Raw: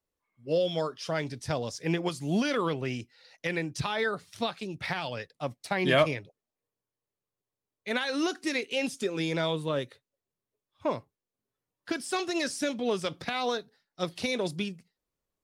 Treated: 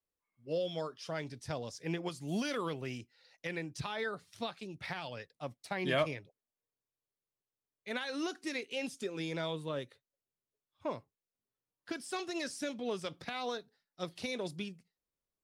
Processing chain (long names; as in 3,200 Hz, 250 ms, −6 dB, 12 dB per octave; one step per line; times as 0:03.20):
0:02.27–0:02.98: high-shelf EQ 6,300 Hz → 9,300 Hz +11 dB
level −8 dB